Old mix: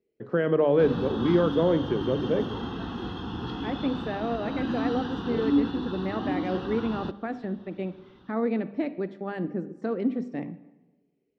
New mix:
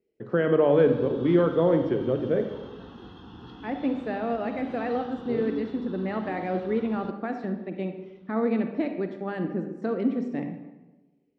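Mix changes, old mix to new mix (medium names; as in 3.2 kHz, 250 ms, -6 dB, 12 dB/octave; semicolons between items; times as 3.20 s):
speech: send +9.0 dB; background -11.0 dB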